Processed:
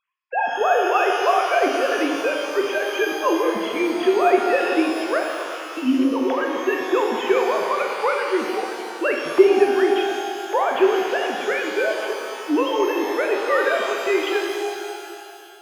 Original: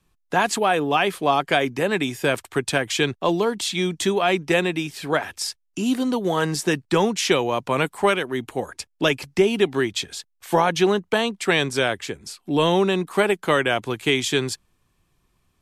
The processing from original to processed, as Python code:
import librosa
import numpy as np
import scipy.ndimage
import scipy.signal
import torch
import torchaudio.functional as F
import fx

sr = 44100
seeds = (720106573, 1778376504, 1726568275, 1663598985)

y = fx.sine_speech(x, sr)
y = fx.rev_shimmer(y, sr, seeds[0], rt60_s=2.5, semitones=12, shimmer_db=-8, drr_db=1.0)
y = y * librosa.db_to_amplitude(-1.0)